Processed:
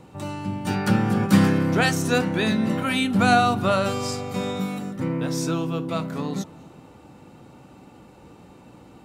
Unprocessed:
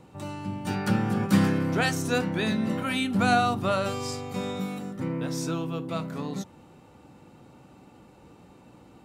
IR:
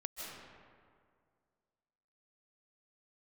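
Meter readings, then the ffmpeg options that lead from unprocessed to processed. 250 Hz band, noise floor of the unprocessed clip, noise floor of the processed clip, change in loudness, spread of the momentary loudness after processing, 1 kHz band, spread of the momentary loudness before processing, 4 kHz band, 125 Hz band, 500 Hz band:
+4.5 dB, -54 dBFS, -49 dBFS, +4.5 dB, 11 LU, +4.5 dB, 11 LU, +4.5 dB, +4.5 dB, +4.5 dB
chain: -filter_complex "[0:a]asplit=2[a][b];[1:a]atrim=start_sample=2205,asetrate=33516,aresample=44100[c];[b][c]afir=irnorm=-1:irlink=0,volume=-21.5dB[d];[a][d]amix=inputs=2:normalize=0,volume=4dB"

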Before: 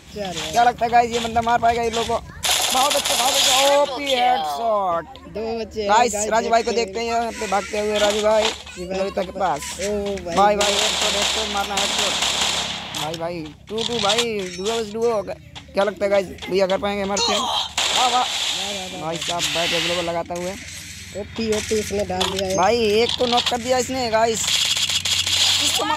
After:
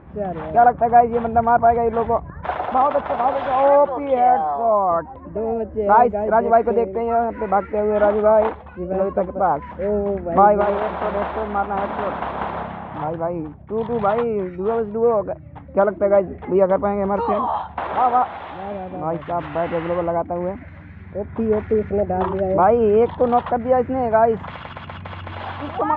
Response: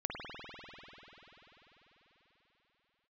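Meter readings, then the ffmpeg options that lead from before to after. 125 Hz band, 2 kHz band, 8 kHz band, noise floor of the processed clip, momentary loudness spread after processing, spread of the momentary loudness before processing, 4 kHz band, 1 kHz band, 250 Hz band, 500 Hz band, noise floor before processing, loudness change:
+3.0 dB, -7.0 dB, under -40 dB, -38 dBFS, 13 LU, 10 LU, under -25 dB, +3.0 dB, +3.0 dB, +3.0 dB, -38 dBFS, 0.0 dB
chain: -af "lowpass=f=1.4k:w=0.5412,lowpass=f=1.4k:w=1.3066,volume=3dB"

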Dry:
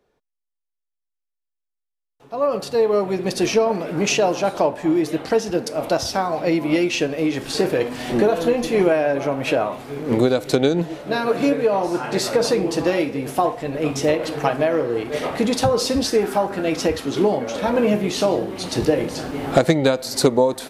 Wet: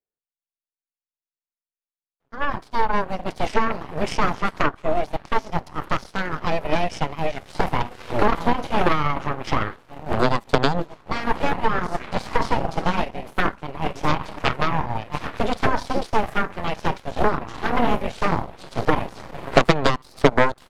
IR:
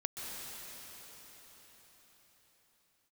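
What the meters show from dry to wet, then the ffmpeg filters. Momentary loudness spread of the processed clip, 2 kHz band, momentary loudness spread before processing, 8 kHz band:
8 LU, +2.0 dB, 5 LU, -13.0 dB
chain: -filter_complex "[0:a]highshelf=f=4.2k:g=-6.5,acrossover=split=3800[a][b];[b]acompressor=threshold=-42dB:ratio=4:attack=1:release=60[c];[a][c]amix=inputs=2:normalize=0,aeval=exprs='0.708*(cos(1*acos(clip(val(0)/0.708,-1,1)))-cos(1*PI/2))+0.2*(cos(3*acos(clip(val(0)/0.708,-1,1)))-cos(3*PI/2))+0.141*(cos(6*acos(clip(val(0)/0.708,-1,1)))-cos(6*PI/2))+0.0178*(cos(7*acos(clip(val(0)/0.708,-1,1)))-cos(7*PI/2))':c=same,asplit=2[d][e];[e]aeval=exprs='clip(val(0),-1,0.299)':c=same,volume=-6.5dB[f];[d][f]amix=inputs=2:normalize=0,volume=-1dB"

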